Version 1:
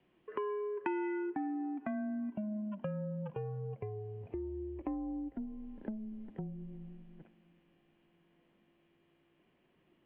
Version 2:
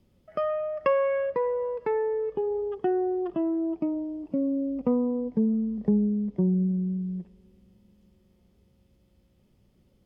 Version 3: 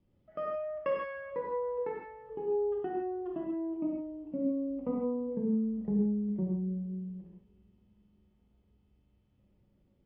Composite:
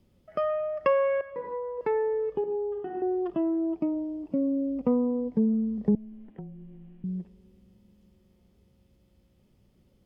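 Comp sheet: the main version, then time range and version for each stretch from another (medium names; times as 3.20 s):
2
1.21–1.81 s: from 3
2.44–3.02 s: from 3
5.95–7.04 s: from 1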